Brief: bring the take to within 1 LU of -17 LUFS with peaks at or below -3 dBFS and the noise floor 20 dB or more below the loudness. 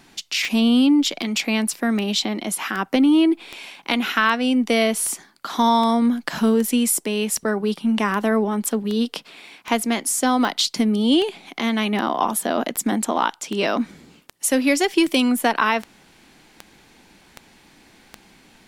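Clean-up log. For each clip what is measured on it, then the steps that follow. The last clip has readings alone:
clicks 24; loudness -20.5 LUFS; peak -2.5 dBFS; loudness target -17.0 LUFS
-> de-click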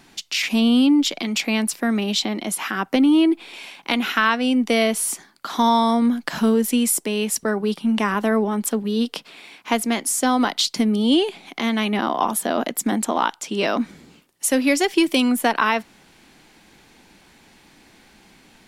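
clicks 0; loudness -20.5 LUFS; peak -2.5 dBFS; loudness target -17.0 LUFS
-> gain +3.5 dB; limiter -3 dBFS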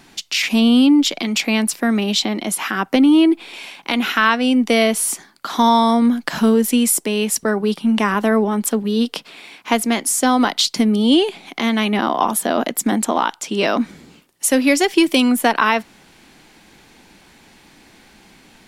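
loudness -17.0 LUFS; peak -3.0 dBFS; noise floor -50 dBFS

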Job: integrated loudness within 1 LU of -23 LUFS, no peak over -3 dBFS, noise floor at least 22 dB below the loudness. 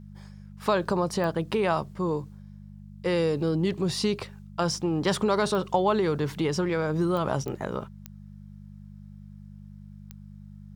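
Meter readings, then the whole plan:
clicks 6; hum 50 Hz; harmonics up to 200 Hz; hum level -43 dBFS; loudness -27.0 LUFS; peak -10.5 dBFS; loudness target -23.0 LUFS
-> de-click; de-hum 50 Hz, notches 4; gain +4 dB

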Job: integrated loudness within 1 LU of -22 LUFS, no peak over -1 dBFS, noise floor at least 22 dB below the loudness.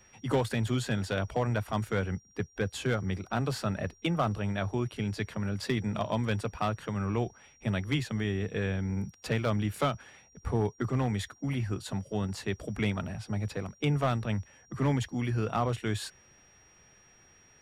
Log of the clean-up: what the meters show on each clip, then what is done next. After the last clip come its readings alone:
clipped 0.4%; flat tops at -20.0 dBFS; steady tone 5700 Hz; tone level -60 dBFS; loudness -32.0 LUFS; peak -20.0 dBFS; loudness target -22.0 LUFS
-> clip repair -20 dBFS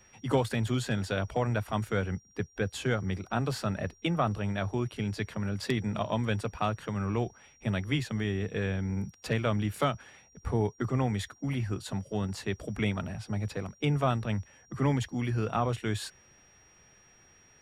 clipped 0.0%; steady tone 5700 Hz; tone level -60 dBFS
-> notch 5700 Hz, Q 30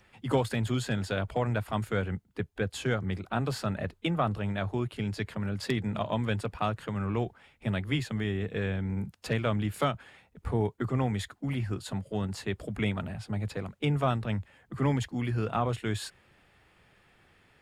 steady tone none; loudness -32.0 LUFS; peak -12.5 dBFS; loudness target -22.0 LUFS
-> gain +10 dB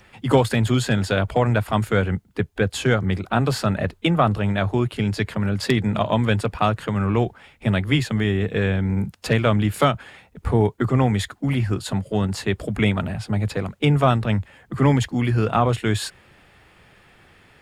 loudness -22.0 LUFS; peak -2.5 dBFS; noise floor -55 dBFS

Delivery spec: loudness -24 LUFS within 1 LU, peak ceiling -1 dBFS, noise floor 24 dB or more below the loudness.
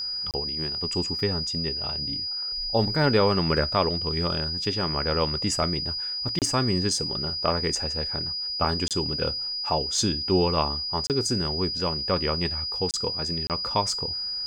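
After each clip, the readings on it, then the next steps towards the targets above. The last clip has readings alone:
dropouts 6; longest dropout 28 ms; steady tone 4900 Hz; tone level -28 dBFS; loudness -25.0 LUFS; peak -8.0 dBFS; loudness target -24.0 LUFS
-> interpolate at 0.31/6.39/8.88/11.07/12.91/13.47, 28 ms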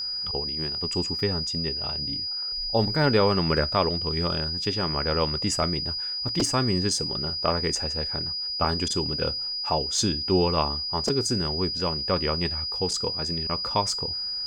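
dropouts 0; steady tone 4900 Hz; tone level -28 dBFS
-> notch 4900 Hz, Q 30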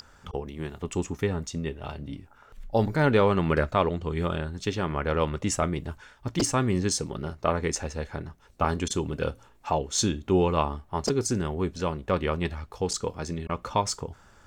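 steady tone none; loudness -28.0 LUFS; peak -9.0 dBFS; loudness target -24.0 LUFS
-> gain +4 dB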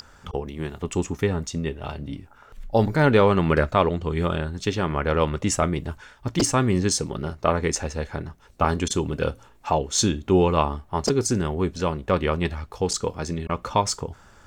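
loudness -24.0 LUFS; peak -5.0 dBFS; noise floor -52 dBFS

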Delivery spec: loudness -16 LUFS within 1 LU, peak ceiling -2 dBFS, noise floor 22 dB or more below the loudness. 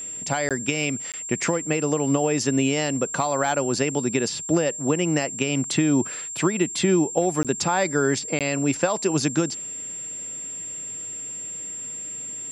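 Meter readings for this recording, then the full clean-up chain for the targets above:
dropouts 4; longest dropout 17 ms; steady tone 7400 Hz; tone level -31 dBFS; loudness -24.0 LUFS; peak -7.5 dBFS; loudness target -16.0 LUFS
-> interpolate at 0.49/1.12/7.43/8.39, 17 ms; notch 7400 Hz, Q 30; gain +8 dB; limiter -2 dBFS

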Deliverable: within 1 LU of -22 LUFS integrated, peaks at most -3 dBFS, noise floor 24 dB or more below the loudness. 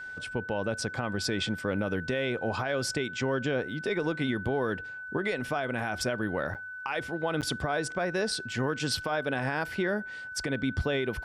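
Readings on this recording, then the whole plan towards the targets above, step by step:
dropouts 2; longest dropout 8.4 ms; steady tone 1500 Hz; tone level -38 dBFS; loudness -31.0 LUFS; peak -18.5 dBFS; loudness target -22.0 LUFS
-> interpolate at 6.54/7.41, 8.4 ms; notch 1500 Hz, Q 30; gain +9 dB

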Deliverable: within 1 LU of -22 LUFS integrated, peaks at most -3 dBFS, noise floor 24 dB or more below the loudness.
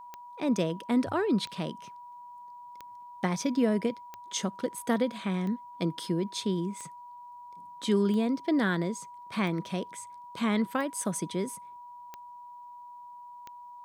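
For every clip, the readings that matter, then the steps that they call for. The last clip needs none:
clicks 11; steady tone 970 Hz; tone level -44 dBFS; loudness -30.5 LUFS; peak -12.0 dBFS; loudness target -22.0 LUFS
-> de-click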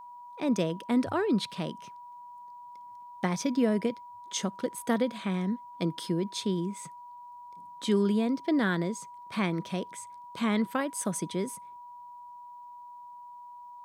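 clicks 0; steady tone 970 Hz; tone level -44 dBFS
-> notch 970 Hz, Q 30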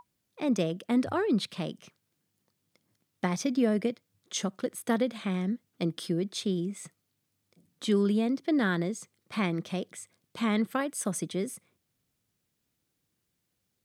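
steady tone none; loudness -30.5 LUFS; peak -12.5 dBFS; loudness target -22.0 LUFS
-> gain +8.5 dB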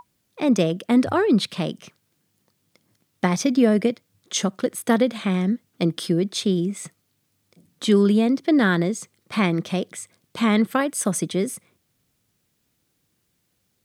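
loudness -22.0 LUFS; peak -4.0 dBFS; noise floor -71 dBFS

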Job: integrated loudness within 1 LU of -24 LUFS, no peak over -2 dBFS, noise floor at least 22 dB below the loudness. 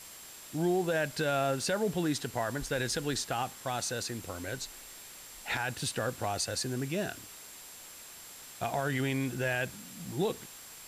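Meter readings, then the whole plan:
steady tone 7500 Hz; tone level -53 dBFS; noise floor -49 dBFS; noise floor target -55 dBFS; loudness -33.0 LUFS; peak -21.0 dBFS; loudness target -24.0 LUFS
-> notch 7500 Hz, Q 30; noise print and reduce 6 dB; gain +9 dB

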